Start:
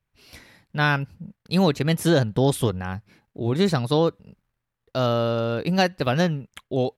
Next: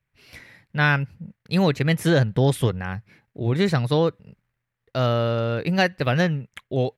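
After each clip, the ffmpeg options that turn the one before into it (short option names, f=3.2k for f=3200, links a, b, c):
-af "equalizer=f=125:t=o:w=1:g=7,equalizer=f=500:t=o:w=1:g=3,equalizer=f=2k:t=o:w=1:g=9,volume=-3.5dB"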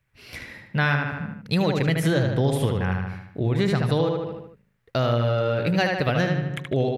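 -filter_complex "[0:a]asplit=2[a][b];[b]adelay=76,lowpass=f=4.2k:p=1,volume=-4dB,asplit=2[c][d];[d]adelay=76,lowpass=f=4.2k:p=1,volume=0.5,asplit=2[e][f];[f]adelay=76,lowpass=f=4.2k:p=1,volume=0.5,asplit=2[g][h];[h]adelay=76,lowpass=f=4.2k:p=1,volume=0.5,asplit=2[i][j];[j]adelay=76,lowpass=f=4.2k:p=1,volume=0.5,asplit=2[k][l];[l]adelay=76,lowpass=f=4.2k:p=1,volume=0.5[m];[a][c][e][g][i][k][m]amix=inputs=7:normalize=0,acompressor=threshold=-28dB:ratio=2.5,volume=5.5dB"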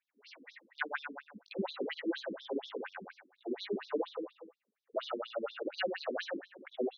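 -af "flanger=delay=18.5:depth=2.9:speed=2.1,afftfilt=real='re*between(b*sr/1024,290*pow(4800/290,0.5+0.5*sin(2*PI*4.2*pts/sr))/1.41,290*pow(4800/290,0.5+0.5*sin(2*PI*4.2*pts/sr))*1.41)':imag='im*between(b*sr/1024,290*pow(4800/290,0.5+0.5*sin(2*PI*4.2*pts/sr))/1.41,290*pow(4800/290,0.5+0.5*sin(2*PI*4.2*pts/sr))*1.41)':win_size=1024:overlap=0.75,volume=-2.5dB"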